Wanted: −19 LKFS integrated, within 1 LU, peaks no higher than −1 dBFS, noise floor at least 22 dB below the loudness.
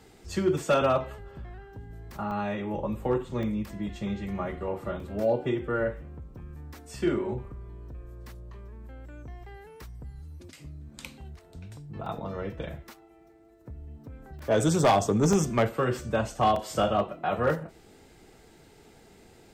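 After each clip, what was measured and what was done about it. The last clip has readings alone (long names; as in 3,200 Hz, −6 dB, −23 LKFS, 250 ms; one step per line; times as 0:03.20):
share of clipped samples 0.3%; peaks flattened at −16.0 dBFS; number of dropouts 7; longest dropout 2.9 ms; integrated loudness −28.0 LKFS; sample peak −16.0 dBFS; target loudness −19.0 LKFS
→ clipped peaks rebuilt −16 dBFS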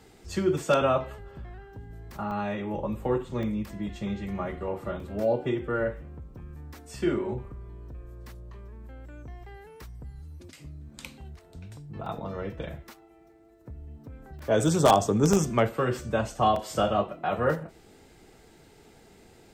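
share of clipped samples 0.0%; number of dropouts 7; longest dropout 2.9 ms
→ repair the gap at 0:02.31/0:03.43/0:05.00/0:12.06/0:14.39/0:15.33/0:16.56, 2.9 ms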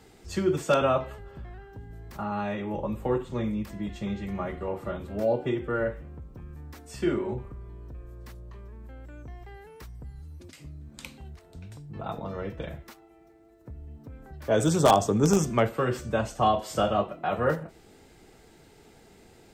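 number of dropouts 0; integrated loudness −28.0 LKFS; sample peak −7.0 dBFS; target loudness −19.0 LKFS
→ level +9 dB
brickwall limiter −1 dBFS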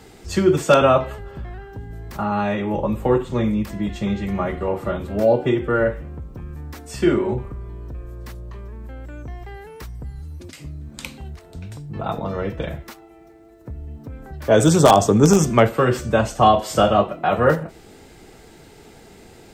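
integrated loudness −19.0 LKFS; sample peak −1.0 dBFS; background noise floor −46 dBFS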